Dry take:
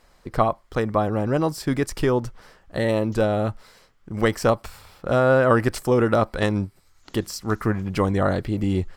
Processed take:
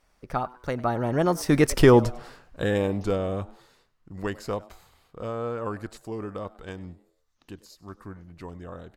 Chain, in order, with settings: Doppler pass-by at 1.86, 39 m/s, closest 13 m; frequency-shifting echo 99 ms, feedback 37%, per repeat +120 Hz, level -21 dB; gain +6 dB

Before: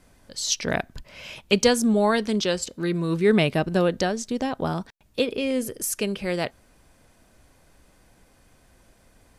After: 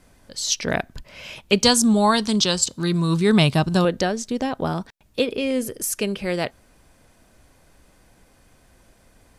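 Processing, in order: 1.64–3.85 graphic EQ 125/500/1000/2000/4000/8000 Hz +8/-6/+7/-5/+7/+8 dB; gain +2 dB

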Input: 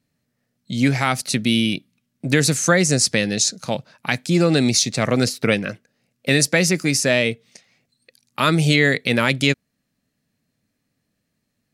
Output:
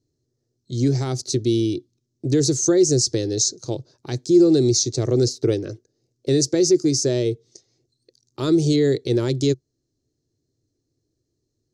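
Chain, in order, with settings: EQ curve 130 Hz 0 dB, 200 Hz -20 dB, 360 Hz +9 dB, 550 Hz -10 dB, 2500 Hz -26 dB, 4200 Hz -7 dB, 6400 Hz -1 dB, 11000 Hz -24 dB; in parallel at +1 dB: limiter -14 dBFS, peak gain reduction 8.5 dB; on the sum: gain -3.5 dB

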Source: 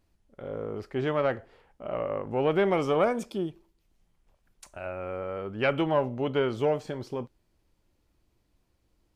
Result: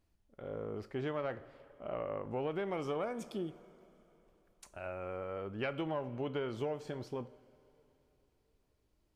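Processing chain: two-slope reverb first 0.46 s, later 3.5 s, from -15 dB, DRR 15 dB; compressor 6:1, threshold -27 dBFS, peak gain reduction 8.5 dB; gain -6 dB

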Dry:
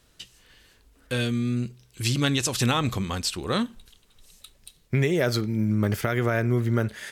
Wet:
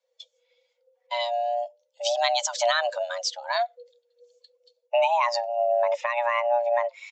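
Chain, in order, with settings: per-bin expansion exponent 1.5; frequency shift +470 Hz; downsampling 16000 Hz; gain +2 dB

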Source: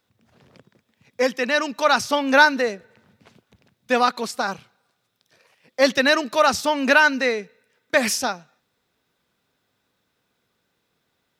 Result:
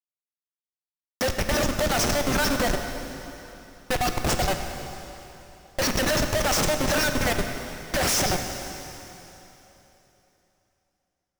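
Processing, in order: LFO high-pass square 8.6 Hz 550–5500 Hz; fixed phaser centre 690 Hz, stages 8; Schmitt trigger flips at -32 dBFS; plate-style reverb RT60 3.3 s, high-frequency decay 0.95×, DRR 5 dB; gain +2 dB

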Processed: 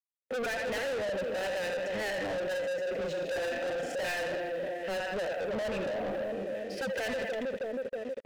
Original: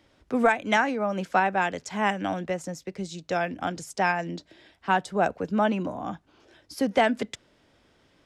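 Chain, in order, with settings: 2.26–4.29 doubler 37 ms -2.5 dB; split-band echo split 640 Hz, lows 0.319 s, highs 81 ms, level -9.5 dB; crossover distortion -50 dBFS; vowel filter e; compressor 1.5:1, threshold -45 dBFS, peak gain reduction 9 dB; harmonic-percussive split harmonic +8 dB; gate with hold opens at -51 dBFS; sine folder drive 11 dB, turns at -18 dBFS; sample leveller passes 3; limiter -27 dBFS, peak gain reduction 9 dB; low shelf 130 Hz +6.5 dB; gain -4 dB

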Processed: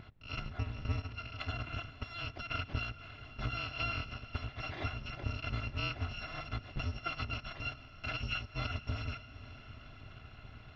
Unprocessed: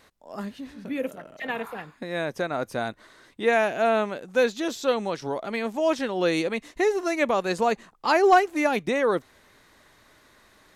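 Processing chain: FFT order left unsorted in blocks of 256 samples; bell 120 Hz +13 dB 2 oct; compressor 10:1, threshold -35 dBFS, peak gain reduction 21.5 dB; Gaussian blur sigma 3.1 samples; on a send: diffused feedback echo 0.506 s, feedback 61%, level -16 dB; on the sum: gain +10.5 dB

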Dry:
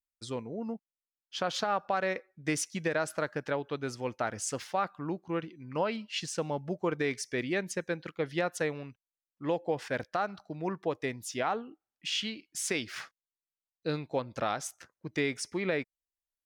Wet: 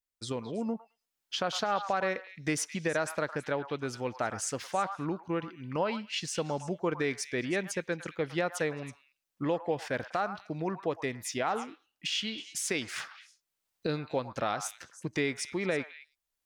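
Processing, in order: recorder AGC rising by 14 dB/s; delay with a stepping band-pass 0.108 s, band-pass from 1100 Hz, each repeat 1.4 oct, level -7.5 dB

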